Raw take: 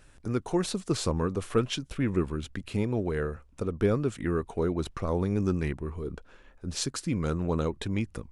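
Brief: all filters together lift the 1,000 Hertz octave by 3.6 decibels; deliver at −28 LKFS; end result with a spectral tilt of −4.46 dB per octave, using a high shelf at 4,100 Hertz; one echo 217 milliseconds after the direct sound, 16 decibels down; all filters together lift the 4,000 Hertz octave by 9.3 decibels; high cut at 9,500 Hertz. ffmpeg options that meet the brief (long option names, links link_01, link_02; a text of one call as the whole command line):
ffmpeg -i in.wav -af "lowpass=9500,equalizer=frequency=1000:width_type=o:gain=3.5,equalizer=frequency=4000:width_type=o:gain=6.5,highshelf=frequency=4100:gain=8,aecho=1:1:217:0.158,volume=0.5dB" out.wav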